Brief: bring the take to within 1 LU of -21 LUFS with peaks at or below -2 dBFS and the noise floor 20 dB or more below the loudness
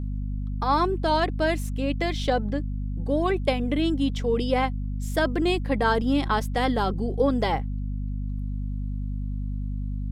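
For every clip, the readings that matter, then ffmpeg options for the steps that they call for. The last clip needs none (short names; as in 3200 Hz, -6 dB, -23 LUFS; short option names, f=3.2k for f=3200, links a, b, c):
hum 50 Hz; harmonics up to 250 Hz; hum level -26 dBFS; loudness -26.0 LUFS; peak -10.0 dBFS; loudness target -21.0 LUFS
-> -af "bandreject=f=50:t=h:w=6,bandreject=f=100:t=h:w=6,bandreject=f=150:t=h:w=6,bandreject=f=200:t=h:w=6,bandreject=f=250:t=h:w=6"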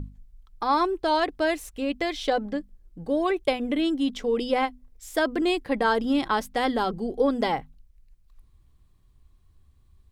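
hum none; loudness -26.0 LUFS; peak -11.0 dBFS; loudness target -21.0 LUFS
-> -af "volume=5dB"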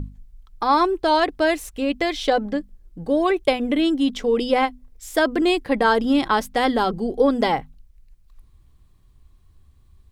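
loudness -21.0 LUFS; peak -6.0 dBFS; noise floor -54 dBFS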